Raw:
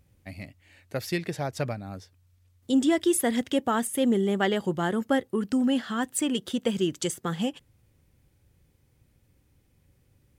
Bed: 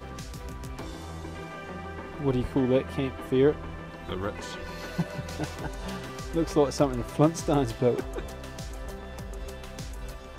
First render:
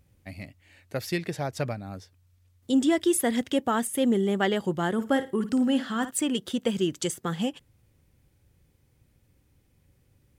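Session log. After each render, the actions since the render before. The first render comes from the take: 4.93–6.11 flutter echo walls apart 9.4 m, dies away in 0.28 s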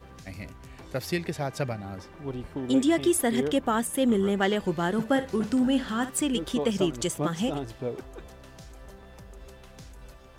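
add bed -8.5 dB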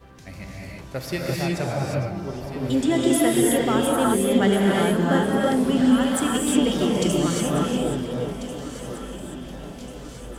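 echo with dull and thin repeats by turns 0.696 s, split 870 Hz, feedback 71%, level -10 dB; non-linear reverb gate 0.38 s rising, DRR -3.5 dB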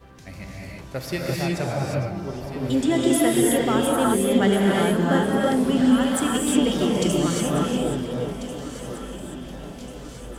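nothing audible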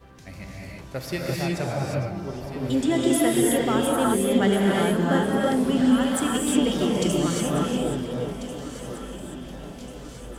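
gain -1.5 dB

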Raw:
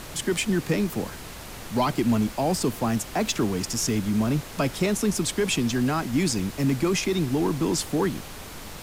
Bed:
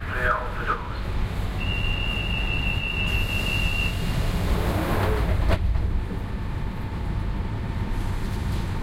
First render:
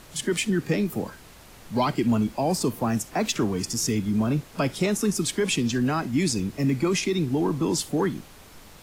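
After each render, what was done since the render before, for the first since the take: noise print and reduce 9 dB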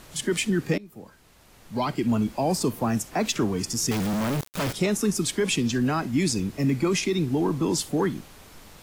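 0.78–2.35 fade in, from -23 dB; 3.91–4.73 companded quantiser 2-bit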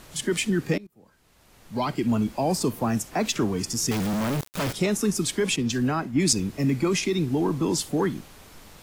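0.87–1.97 fade in equal-power, from -22 dB; 5.56–6.33 three-band expander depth 100%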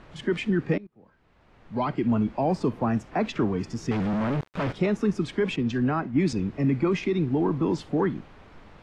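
LPF 2200 Hz 12 dB/oct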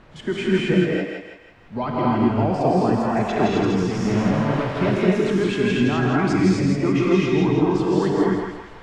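on a send: thinning echo 0.164 s, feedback 48%, high-pass 570 Hz, level -3.5 dB; on the sum: non-linear reverb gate 0.29 s rising, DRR -4.5 dB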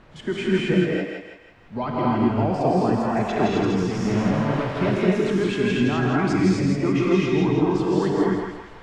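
gain -1.5 dB

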